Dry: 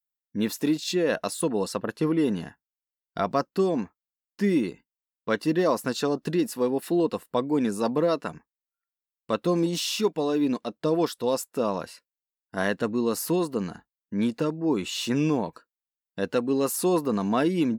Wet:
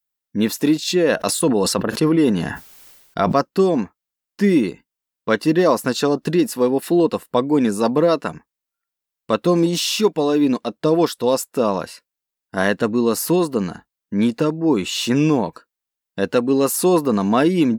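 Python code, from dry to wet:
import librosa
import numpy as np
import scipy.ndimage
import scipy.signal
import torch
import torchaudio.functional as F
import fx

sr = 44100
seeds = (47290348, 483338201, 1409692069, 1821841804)

y = fx.sustainer(x, sr, db_per_s=49.0, at=(1.17, 3.33))
y = F.gain(torch.from_numpy(y), 7.5).numpy()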